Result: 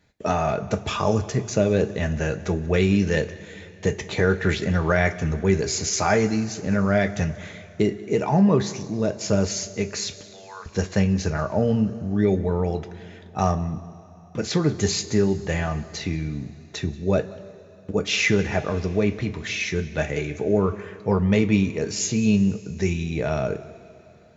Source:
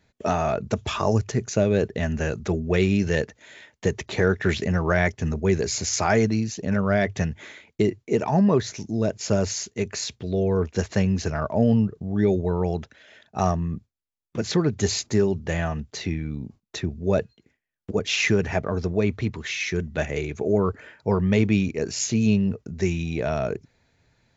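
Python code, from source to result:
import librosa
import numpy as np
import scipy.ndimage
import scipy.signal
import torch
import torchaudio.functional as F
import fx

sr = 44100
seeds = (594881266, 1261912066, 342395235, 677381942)

y = fx.highpass(x, sr, hz=910.0, slope=24, at=(10.21, 10.66))
y = y + 10.0 ** (-21.5 / 20.0) * np.pad(y, (int(184 * sr / 1000.0), 0))[:len(y)]
y = fx.rev_double_slope(y, sr, seeds[0], early_s=0.21, late_s=3.3, knee_db=-20, drr_db=6.0)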